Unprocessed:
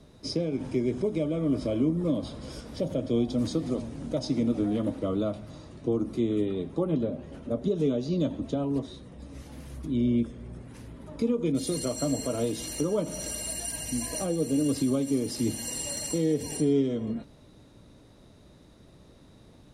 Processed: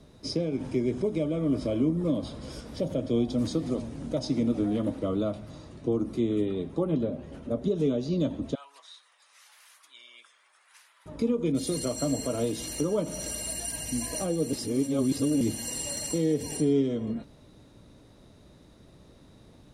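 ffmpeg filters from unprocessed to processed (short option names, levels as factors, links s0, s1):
-filter_complex "[0:a]asettb=1/sr,asplit=3[s0][s1][s2];[s0]atrim=end=8.554[s3];[s1]atrim=start=8.55:end=11.06,asetpts=PTS-STARTPTS,afade=t=in:d=0.004:c=qsin,afade=t=out:st=2.506:d=0.004:c=qsin,highpass=f=1100:w=0.5412,highpass=f=1100:w=1.3066[s4];[s2]atrim=start=11.056[s5];[s3][s4]acrossfade=d=0.004:c1=hsin:c2=qsin[s6];[s6][s5]acrossfade=d=0.004:c1=qsin:c2=hsin,asplit=3[s7][s8][s9];[s7]atrim=end=14.532[s10];[s8]atrim=start=14.528:end=15.412,asetpts=PTS-STARTPTS,areverse[s11];[s9]atrim=start=15.408[s12];[s10][s11]acrossfade=d=0.004:c1=hsin:c2=hsin[s13];[s13][s12]acrossfade=d=0.004:c1=hsin:c2=hsin"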